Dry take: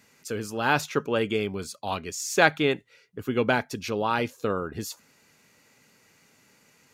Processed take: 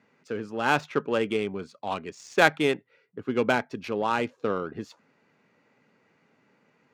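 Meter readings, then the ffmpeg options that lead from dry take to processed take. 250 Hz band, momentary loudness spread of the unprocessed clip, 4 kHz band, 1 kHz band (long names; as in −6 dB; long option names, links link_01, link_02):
−0.5 dB, 14 LU, −2.0 dB, 0.0 dB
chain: -af "highpass=150,adynamicsmooth=sensitivity=2.5:basefreq=2000"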